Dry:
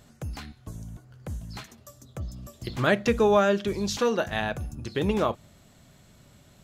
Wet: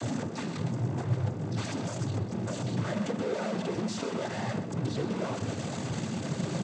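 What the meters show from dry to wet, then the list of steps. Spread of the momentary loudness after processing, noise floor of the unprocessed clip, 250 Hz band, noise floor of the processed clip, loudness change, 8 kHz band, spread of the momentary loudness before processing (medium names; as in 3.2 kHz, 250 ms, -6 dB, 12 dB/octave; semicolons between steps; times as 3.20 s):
3 LU, -56 dBFS, -1.0 dB, -37 dBFS, -6.5 dB, -1.0 dB, 21 LU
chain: one-bit comparator; tilt shelf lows +5.5 dB; noise-vocoded speech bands 16; on a send: delay 125 ms -11 dB; on the sum: trim -5.5 dB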